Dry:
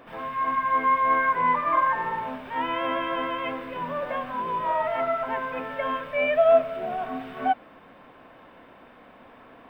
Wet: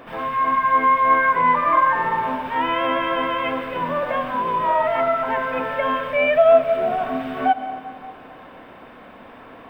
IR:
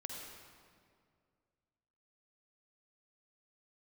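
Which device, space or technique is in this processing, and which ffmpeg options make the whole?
ducked reverb: -filter_complex "[0:a]asplit=3[a][b][c];[1:a]atrim=start_sample=2205[d];[b][d]afir=irnorm=-1:irlink=0[e];[c]apad=whole_len=427716[f];[e][f]sidechaincompress=threshold=-28dB:ratio=8:attack=16:release=124,volume=-2.5dB[g];[a][g]amix=inputs=2:normalize=0,volume=4dB"

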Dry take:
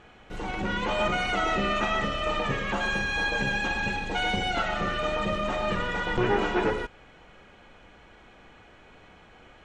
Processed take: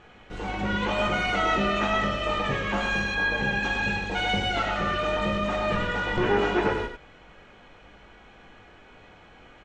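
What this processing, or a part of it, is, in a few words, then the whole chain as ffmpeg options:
slapback doubling: -filter_complex "[0:a]asplit=3[a][b][c];[b]adelay=20,volume=-6.5dB[d];[c]adelay=98,volume=-7dB[e];[a][d][e]amix=inputs=3:normalize=0,lowpass=7.7k,asettb=1/sr,asplit=3[f][g][h];[f]atrim=end=3.144[i];[g]atrim=start=3.14:end=3.63,asetpts=PTS-STARTPTS,afade=t=in:d=0.004:c=qsin,afade=t=out:st=0.486:d=0.004:c=qsin,acrossover=split=3300[j][k];[k]acompressor=threshold=-45dB:ratio=4:attack=1:release=60[l];[j][l]amix=inputs=2:normalize=0[m];[h]atrim=start=3.626[n];[i][m]acrossfade=d=0.004:c1=hsin:c2=qsin[o];[o][n]acrossfade=d=0.004:c1=qsin:c2=hsin"

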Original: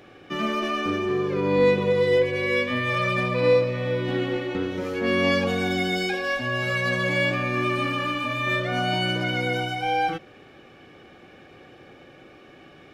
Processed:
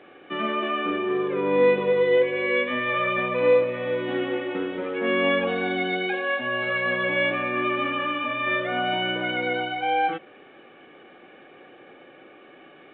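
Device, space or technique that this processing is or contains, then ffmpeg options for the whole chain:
telephone: -af "highpass=270,lowpass=3.3k,volume=1dB" -ar 8000 -c:a pcm_alaw

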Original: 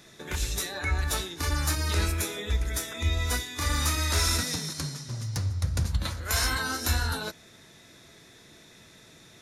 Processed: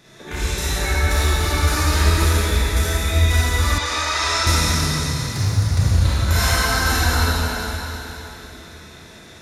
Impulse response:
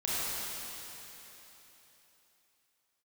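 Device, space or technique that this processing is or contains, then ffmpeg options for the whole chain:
swimming-pool hall: -filter_complex "[1:a]atrim=start_sample=2205[a];[0:a][a]afir=irnorm=-1:irlink=0,highshelf=f=4.1k:g=-5.5,asettb=1/sr,asplit=3[b][c][d];[b]atrim=end=3.784[e];[c]atrim=start=3.78:end=4.47,asetpts=PTS-STARTPTS,afade=t=in:d=0.004:c=qsin,afade=t=out:st=0.686:d=0.004:c=qsin,acrossover=split=440 7500:gain=0.158 1 0.1[f][g][h];[f][g][h]amix=inputs=3:normalize=0[i];[d]atrim=start=4.466[j];[e][i]acrossfade=d=0.004:c1=hsin:c2=qsin[k];[k][j]acrossfade=d=0.004:c1=qsin:c2=hsin,volume=3dB"

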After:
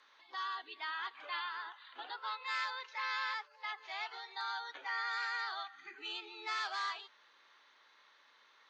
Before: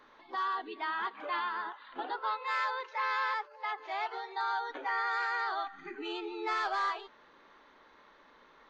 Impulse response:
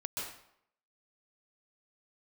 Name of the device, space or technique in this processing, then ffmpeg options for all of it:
piezo pickup straight into a mixer: -af "lowpass=5.4k,aderivative,volume=8.5dB"

